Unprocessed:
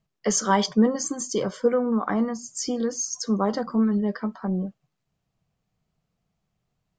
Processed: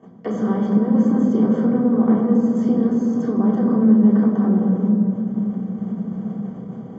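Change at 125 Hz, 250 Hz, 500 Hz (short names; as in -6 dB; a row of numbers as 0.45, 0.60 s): n/a, +10.5 dB, +2.0 dB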